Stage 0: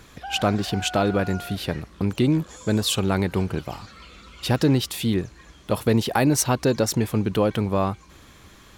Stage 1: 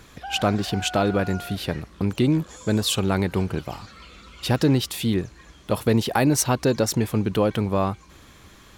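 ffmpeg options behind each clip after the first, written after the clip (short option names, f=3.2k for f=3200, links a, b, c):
-af anull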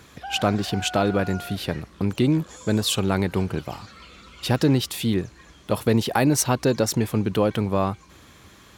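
-af "highpass=60"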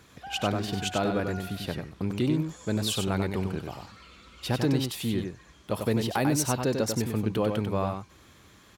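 -af "aecho=1:1:95:0.531,volume=-6.5dB"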